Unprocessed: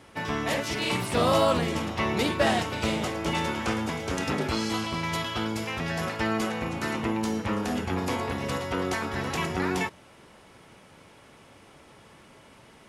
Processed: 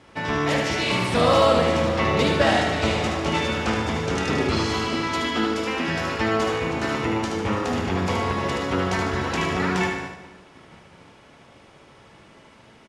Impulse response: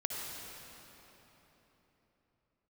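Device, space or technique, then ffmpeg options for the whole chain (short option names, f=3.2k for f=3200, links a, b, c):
keyed gated reverb: -filter_complex "[0:a]asettb=1/sr,asplit=3[a][b][c];[a]atrim=end=4.874[d];[b]atrim=start=4.87:end=5.88,asetpts=PTS-STARTPTS,afade=t=in:d=0.004:c=qsin,afade=t=out:st=1.006:d=0.004:c=qsin,lowshelf=f=180:t=q:w=3:g=-10.5[e];[c]atrim=start=5.876[f];[d][e]acrossfade=d=0.004:c1=hsin:c2=qsin[g];[g][f]acrossfade=d=0.004:c1=qsin:c2=hsin,lowpass=6.9k,asplit=3[h][i][j];[1:a]atrim=start_sample=2205[k];[i][k]afir=irnorm=-1:irlink=0[l];[j]apad=whole_len=568082[m];[l][m]sidechaingate=range=-33dB:threshold=-50dB:ratio=16:detection=peak,volume=-5.5dB[n];[h][n]amix=inputs=2:normalize=0,aecho=1:1:75|150|225|300|375|450:0.596|0.28|0.132|0.0618|0.0291|0.0137"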